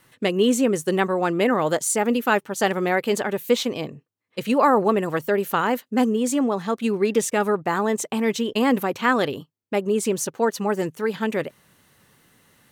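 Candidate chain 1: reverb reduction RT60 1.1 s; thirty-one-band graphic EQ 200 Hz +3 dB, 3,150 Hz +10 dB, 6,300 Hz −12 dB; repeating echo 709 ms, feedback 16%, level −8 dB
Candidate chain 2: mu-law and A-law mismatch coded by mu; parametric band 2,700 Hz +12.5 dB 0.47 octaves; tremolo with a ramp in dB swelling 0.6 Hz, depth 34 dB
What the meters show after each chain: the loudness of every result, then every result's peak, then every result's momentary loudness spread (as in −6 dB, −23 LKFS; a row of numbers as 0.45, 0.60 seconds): −22.5, −28.0 LKFS; −6.0, −8.0 dBFS; 9, 21 LU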